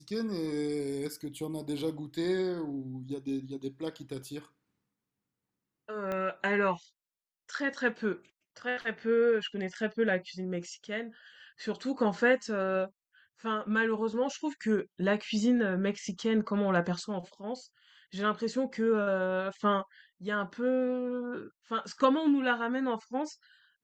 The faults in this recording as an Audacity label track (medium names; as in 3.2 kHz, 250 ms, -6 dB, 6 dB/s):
6.120000	6.120000	pop -22 dBFS